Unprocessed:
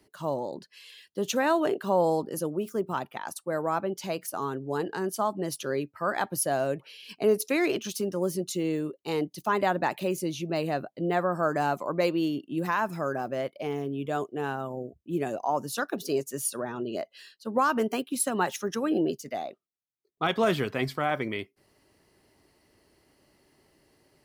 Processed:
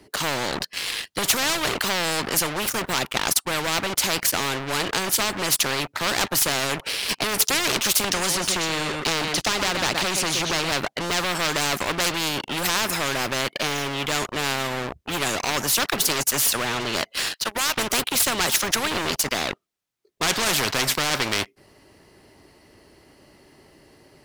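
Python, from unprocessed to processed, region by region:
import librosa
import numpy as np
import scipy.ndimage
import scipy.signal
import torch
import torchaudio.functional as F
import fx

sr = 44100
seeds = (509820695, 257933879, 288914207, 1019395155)

y = fx.chain(x, sr, fx.air_absorb(metres=84.0),
    fx.echo_single(ms=123, db=-13.0),
    fx.band_squash(depth_pct=100), at=(8.04, 10.72))
y = fx.chain(y, sr, fx.highpass(hz=1500.0, slope=12),
    fx.band_squash(depth_pct=40), at=(17.17, 17.78))
y = fx.leveller(y, sr, passes=3)
y = fx.high_shelf(y, sr, hz=9000.0, db=-6.5)
y = fx.spectral_comp(y, sr, ratio=4.0)
y = y * 10.0 ** (6.5 / 20.0)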